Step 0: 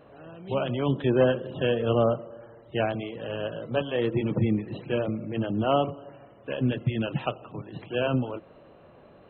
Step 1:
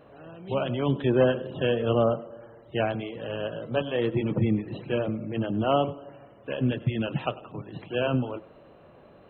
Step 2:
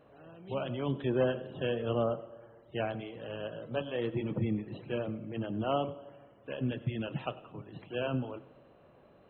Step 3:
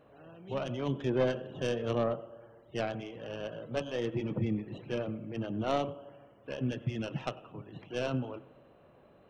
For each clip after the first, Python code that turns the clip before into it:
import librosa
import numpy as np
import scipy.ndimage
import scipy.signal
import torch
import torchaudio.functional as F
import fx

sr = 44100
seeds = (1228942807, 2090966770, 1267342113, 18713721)

y1 = x + 10.0 ** (-19.5 / 20.0) * np.pad(x, (int(99 * sr / 1000.0), 0))[:len(x)]
y2 = fx.rev_schroeder(y1, sr, rt60_s=1.2, comb_ms=30, drr_db=18.5)
y2 = F.gain(torch.from_numpy(y2), -7.5).numpy()
y3 = fx.tracing_dist(y2, sr, depth_ms=0.099)